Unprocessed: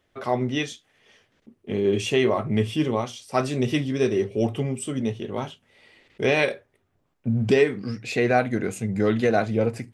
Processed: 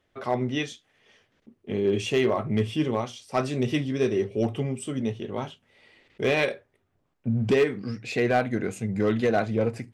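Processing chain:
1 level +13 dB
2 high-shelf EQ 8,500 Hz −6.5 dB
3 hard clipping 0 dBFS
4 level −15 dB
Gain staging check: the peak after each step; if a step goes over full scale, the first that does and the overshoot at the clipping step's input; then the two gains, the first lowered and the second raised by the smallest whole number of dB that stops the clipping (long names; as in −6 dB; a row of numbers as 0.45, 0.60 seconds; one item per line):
+5.5, +5.5, 0.0, −15.0 dBFS
step 1, 5.5 dB
step 1 +7 dB, step 4 −9 dB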